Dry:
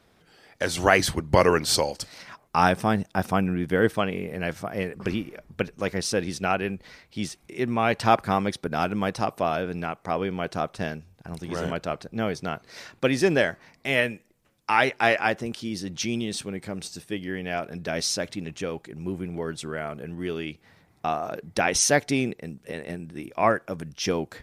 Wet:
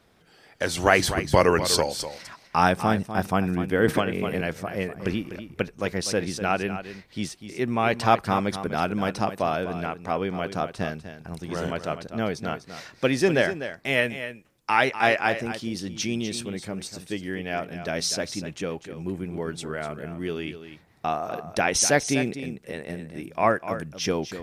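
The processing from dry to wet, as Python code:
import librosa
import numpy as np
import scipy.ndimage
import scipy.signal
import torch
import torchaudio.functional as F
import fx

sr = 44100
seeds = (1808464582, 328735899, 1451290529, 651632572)

p1 = x + fx.echo_single(x, sr, ms=248, db=-11.0, dry=0)
y = fx.band_squash(p1, sr, depth_pct=100, at=(3.88, 4.41))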